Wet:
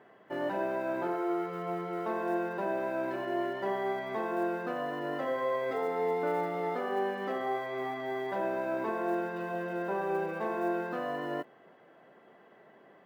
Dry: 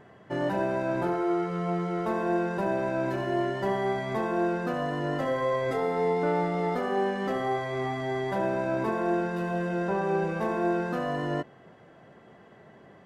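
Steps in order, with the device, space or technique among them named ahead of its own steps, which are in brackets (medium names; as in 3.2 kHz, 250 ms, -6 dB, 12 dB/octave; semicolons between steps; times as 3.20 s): early digital voice recorder (band-pass 280–3600 Hz; block-companded coder 7-bit); trim -3.5 dB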